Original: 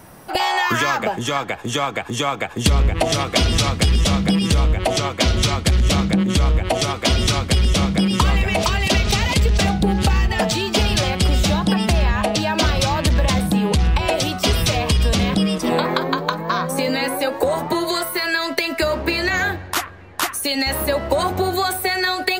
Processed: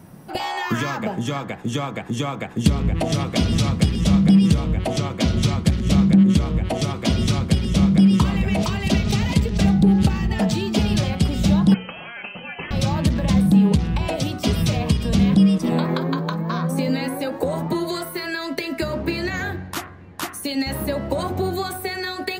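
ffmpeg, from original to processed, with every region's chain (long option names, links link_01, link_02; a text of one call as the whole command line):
ffmpeg -i in.wav -filter_complex "[0:a]asettb=1/sr,asplit=3[link_01][link_02][link_03];[link_01]atrim=end=11.744[link_04];[link_02]atrim=start=11.74:end=12.71,asetpts=PTS-STARTPTS,afade=type=in:duration=0.004:curve=qsin,afade=type=out:start_time=0.966:duration=0.004:curve=qsin,highpass=frequency=1300:poles=1,lowpass=frequency=2800:width_type=q:width=0.5098,lowpass=frequency=2800:width_type=q:width=0.6013,lowpass=frequency=2800:width_type=q:width=0.9,lowpass=frequency=2800:width_type=q:width=2.563,afreqshift=-3300[link_05];[link_03]atrim=start=12.706[link_06];[link_04][link_05]acrossfade=duration=0.004:curve1=hsin:curve2=qsin[link_07];[link_07][link_06]acrossfade=duration=0.004:curve1=qsin:curve2=hsin,equalizer=frequency=170:width_type=o:width=1.9:gain=14,bandreject=frequency=61.32:width_type=h:width=4,bandreject=frequency=122.64:width_type=h:width=4,bandreject=frequency=183.96:width_type=h:width=4,bandreject=frequency=245.28:width_type=h:width=4,bandreject=frequency=306.6:width_type=h:width=4,bandreject=frequency=367.92:width_type=h:width=4,bandreject=frequency=429.24:width_type=h:width=4,bandreject=frequency=490.56:width_type=h:width=4,bandreject=frequency=551.88:width_type=h:width=4,bandreject=frequency=613.2:width_type=h:width=4,bandreject=frequency=674.52:width_type=h:width=4,bandreject=frequency=735.84:width_type=h:width=4,bandreject=frequency=797.16:width_type=h:width=4,bandreject=frequency=858.48:width_type=h:width=4,bandreject=frequency=919.8:width_type=h:width=4,bandreject=frequency=981.12:width_type=h:width=4,bandreject=frequency=1042.44:width_type=h:width=4,bandreject=frequency=1103.76:width_type=h:width=4,bandreject=frequency=1165.08:width_type=h:width=4,bandreject=frequency=1226.4:width_type=h:width=4,bandreject=frequency=1287.72:width_type=h:width=4,bandreject=frequency=1349.04:width_type=h:width=4,bandreject=frequency=1410.36:width_type=h:width=4,bandreject=frequency=1471.68:width_type=h:width=4,bandreject=frequency=1533:width_type=h:width=4,bandreject=frequency=1594.32:width_type=h:width=4,bandreject=frequency=1655.64:width_type=h:width=4,bandreject=frequency=1716.96:width_type=h:width=4,bandreject=frequency=1778.28:width_type=h:width=4,bandreject=frequency=1839.6:width_type=h:width=4,bandreject=frequency=1900.92:width_type=h:width=4,bandreject=frequency=1962.24:width_type=h:width=4,bandreject=frequency=2023.56:width_type=h:width=4,bandreject=frequency=2084.88:width_type=h:width=4,volume=-8dB" out.wav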